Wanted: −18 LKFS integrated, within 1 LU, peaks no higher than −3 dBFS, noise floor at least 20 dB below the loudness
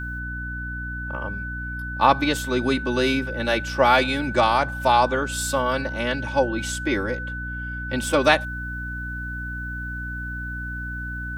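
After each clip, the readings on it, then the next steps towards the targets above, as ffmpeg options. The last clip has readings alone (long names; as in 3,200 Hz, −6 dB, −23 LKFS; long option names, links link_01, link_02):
mains hum 60 Hz; hum harmonics up to 300 Hz; level of the hum −30 dBFS; interfering tone 1,500 Hz; level of the tone −31 dBFS; integrated loudness −24.0 LKFS; sample peak −1.0 dBFS; target loudness −18.0 LKFS
→ -af "bandreject=frequency=60:width_type=h:width=4,bandreject=frequency=120:width_type=h:width=4,bandreject=frequency=180:width_type=h:width=4,bandreject=frequency=240:width_type=h:width=4,bandreject=frequency=300:width_type=h:width=4"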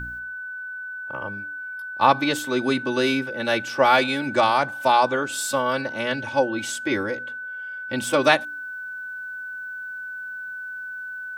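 mains hum none found; interfering tone 1,500 Hz; level of the tone −31 dBFS
→ -af "bandreject=frequency=1500:width=30"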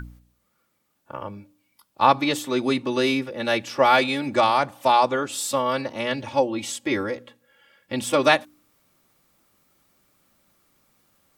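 interfering tone none found; integrated loudness −22.5 LKFS; sample peak −2.5 dBFS; target loudness −18.0 LKFS
→ -af "volume=4.5dB,alimiter=limit=-3dB:level=0:latency=1"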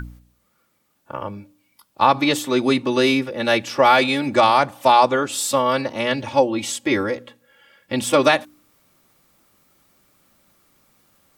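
integrated loudness −18.5 LKFS; sample peak −3.0 dBFS; background noise floor −66 dBFS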